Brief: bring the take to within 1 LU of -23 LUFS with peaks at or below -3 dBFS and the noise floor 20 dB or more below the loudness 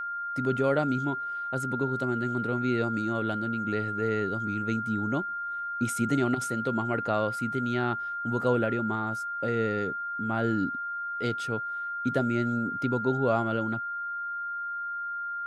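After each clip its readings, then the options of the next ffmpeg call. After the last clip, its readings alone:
steady tone 1400 Hz; tone level -31 dBFS; loudness -29.0 LUFS; peak -12.0 dBFS; loudness target -23.0 LUFS
-> -af "bandreject=f=1.4k:w=30"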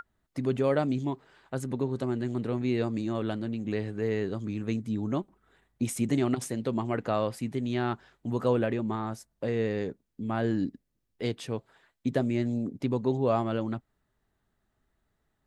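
steady tone none; loudness -30.5 LUFS; peak -12.5 dBFS; loudness target -23.0 LUFS
-> -af "volume=7.5dB"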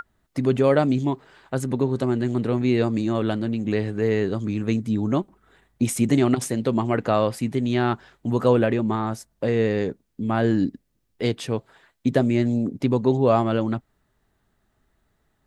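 loudness -23.5 LUFS; peak -5.0 dBFS; noise floor -71 dBFS

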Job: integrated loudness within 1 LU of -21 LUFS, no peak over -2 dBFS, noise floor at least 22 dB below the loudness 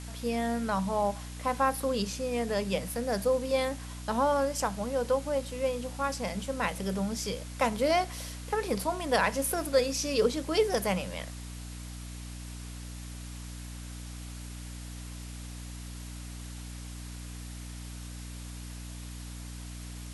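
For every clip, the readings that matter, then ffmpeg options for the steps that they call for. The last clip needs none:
hum 60 Hz; harmonics up to 300 Hz; hum level -39 dBFS; noise floor -42 dBFS; noise floor target -52 dBFS; loudness -30.0 LUFS; peak -12.0 dBFS; loudness target -21.0 LUFS
-> -af "bandreject=f=60:t=h:w=4,bandreject=f=120:t=h:w=4,bandreject=f=180:t=h:w=4,bandreject=f=240:t=h:w=4,bandreject=f=300:t=h:w=4"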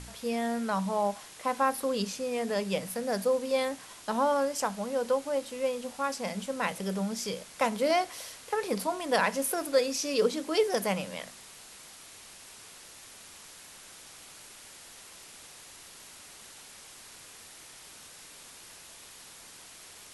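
hum none; noise floor -50 dBFS; noise floor target -53 dBFS
-> -af "afftdn=nr=6:nf=-50"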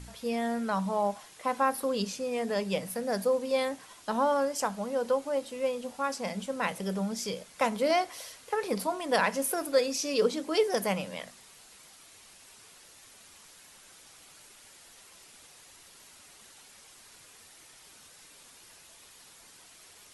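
noise floor -55 dBFS; loudness -30.5 LUFS; peak -12.0 dBFS; loudness target -21.0 LUFS
-> -af "volume=9.5dB"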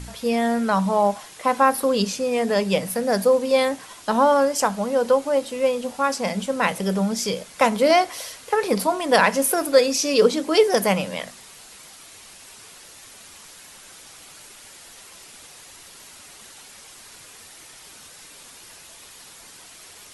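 loudness -21.0 LUFS; peak -2.5 dBFS; noise floor -45 dBFS

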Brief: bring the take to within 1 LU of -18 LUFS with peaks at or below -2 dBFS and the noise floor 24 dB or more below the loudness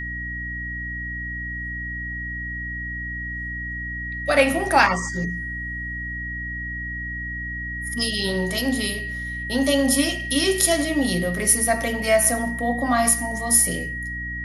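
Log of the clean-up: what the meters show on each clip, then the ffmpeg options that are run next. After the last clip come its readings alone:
hum 60 Hz; harmonics up to 300 Hz; hum level -31 dBFS; steady tone 1900 Hz; tone level -29 dBFS; loudness -22.5 LUFS; peak -3.0 dBFS; loudness target -18.0 LUFS
-> -af "bandreject=f=60:t=h:w=4,bandreject=f=120:t=h:w=4,bandreject=f=180:t=h:w=4,bandreject=f=240:t=h:w=4,bandreject=f=300:t=h:w=4"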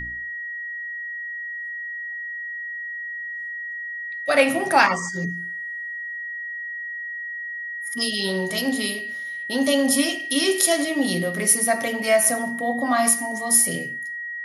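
hum none; steady tone 1900 Hz; tone level -29 dBFS
-> -af "bandreject=f=1.9k:w=30"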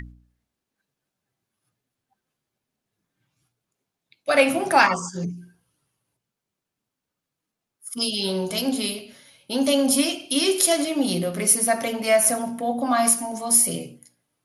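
steady tone none; loudness -21.0 LUFS; peak -2.5 dBFS; loudness target -18.0 LUFS
-> -af "volume=3dB,alimiter=limit=-2dB:level=0:latency=1"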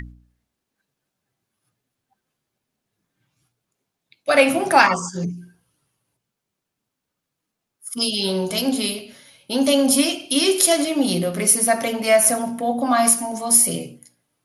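loudness -18.0 LUFS; peak -2.0 dBFS; noise floor -81 dBFS

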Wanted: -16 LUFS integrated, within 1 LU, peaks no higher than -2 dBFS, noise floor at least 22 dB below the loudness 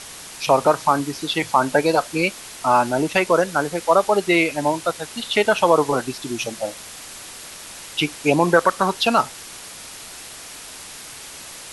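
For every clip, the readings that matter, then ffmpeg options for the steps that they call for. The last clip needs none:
noise floor -38 dBFS; noise floor target -42 dBFS; loudness -20.0 LUFS; peak -2.0 dBFS; loudness target -16.0 LUFS
-> -af "afftdn=nr=6:nf=-38"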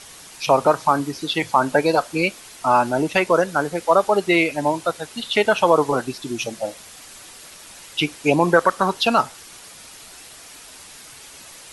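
noise floor -43 dBFS; loudness -20.0 LUFS; peak -2.0 dBFS; loudness target -16.0 LUFS
-> -af "volume=4dB,alimiter=limit=-2dB:level=0:latency=1"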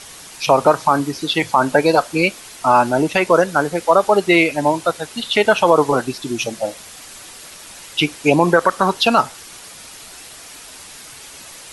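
loudness -16.5 LUFS; peak -2.0 dBFS; noise floor -39 dBFS

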